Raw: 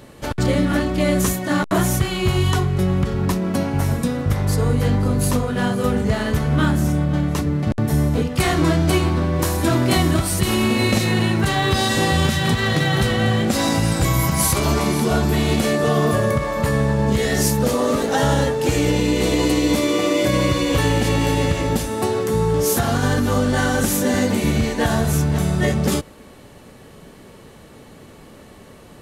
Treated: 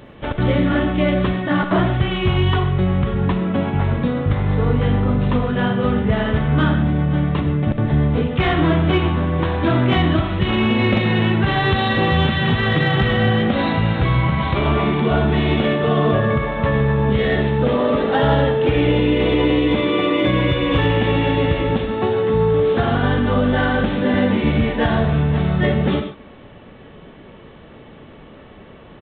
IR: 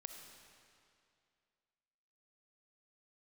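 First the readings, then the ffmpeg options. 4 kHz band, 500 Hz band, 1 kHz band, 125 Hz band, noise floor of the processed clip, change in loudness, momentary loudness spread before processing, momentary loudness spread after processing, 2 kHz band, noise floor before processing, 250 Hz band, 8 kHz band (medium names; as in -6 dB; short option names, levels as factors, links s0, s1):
-1.0 dB, +2.0 dB, +1.5 dB, +1.5 dB, -42 dBFS, +1.0 dB, 3 LU, 3 LU, +2.0 dB, -44 dBFS, +1.0 dB, under -40 dB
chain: -filter_complex "[0:a]aresample=8000,aresample=44100[s0];[1:a]atrim=start_sample=2205,afade=t=out:st=0.2:d=0.01,atrim=end_sample=9261[s1];[s0][s1]afir=irnorm=-1:irlink=0,acontrast=82"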